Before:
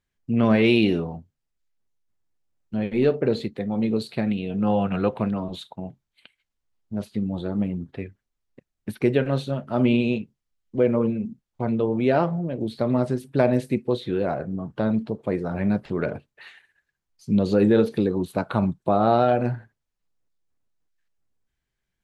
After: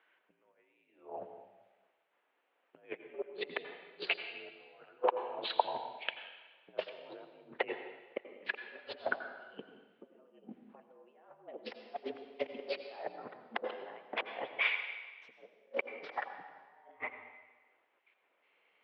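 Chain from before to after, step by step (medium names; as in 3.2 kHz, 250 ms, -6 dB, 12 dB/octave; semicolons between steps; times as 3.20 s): gliding tape speed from 96% -> 138%; compressor with a negative ratio -39 dBFS, ratio -0.5; on a send at -8 dB: reverberation RT60 1.3 s, pre-delay 79 ms; on the sum: mistuned SSB -54 Hz 500–3000 Hz; trim +2.5 dB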